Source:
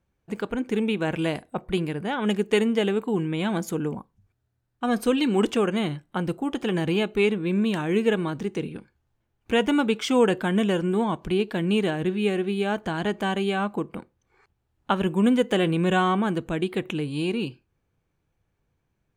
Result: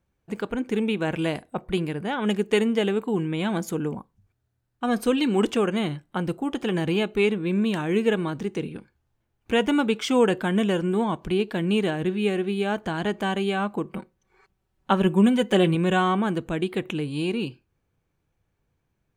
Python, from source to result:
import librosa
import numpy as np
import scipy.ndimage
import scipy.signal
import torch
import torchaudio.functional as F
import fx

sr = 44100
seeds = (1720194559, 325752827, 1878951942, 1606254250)

y = fx.comb(x, sr, ms=5.3, depth=0.61, at=(13.85, 15.75))